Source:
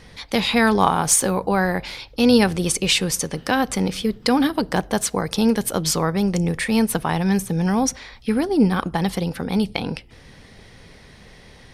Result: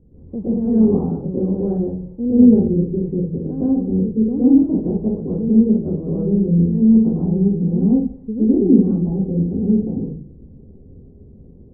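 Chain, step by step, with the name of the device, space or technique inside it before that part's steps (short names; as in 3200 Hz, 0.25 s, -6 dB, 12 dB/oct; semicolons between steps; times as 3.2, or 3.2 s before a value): next room (LPF 400 Hz 24 dB/oct; reverb RT60 0.50 s, pre-delay 0.107 s, DRR -8.5 dB); gain -4 dB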